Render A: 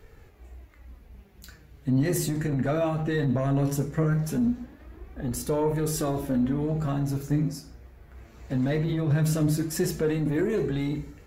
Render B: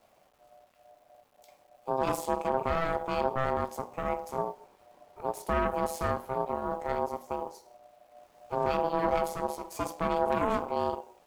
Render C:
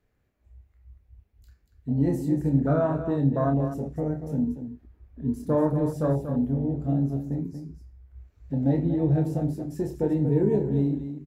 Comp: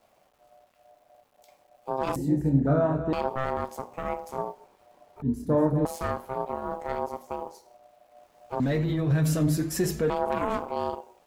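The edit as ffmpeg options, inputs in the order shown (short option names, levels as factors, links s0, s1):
-filter_complex "[2:a]asplit=2[s0][s1];[1:a]asplit=4[s2][s3][s4][s5];[s2]atrim=end=2.162[s6];[s0]atrim=start=2.158:end=3.132[s7];[s3]atrim=start=3.128:end=5.222[s8];[s1]atrim=start=5.218:end=5.852[s9];[s4]atrim=start=5.848:end=8.602[s10];[0:a]atrim=start=8.598:end=10.102[s11];[s5]atrim=start=10.098[s12];[s6][s7]acrossfade=d=0.004:c1=hsin:c2=hsin[s13];[s13][s8]acrossfade=d=0.004:c1=hsin:c2=hsin[s14];[s14][s9]acrossfade=d=0.004:c1=hsin:c2=hsin[s15];[s15][s10]acrossfade=d=0.004:c1=hsin:c2=hsin[s16];[s16][s11]acrossfade=d=0.004:c1=hsin:c2=hsin[s17];[s17][s12]acrossfade=d=0.004:c1=hsin:c2=hsin"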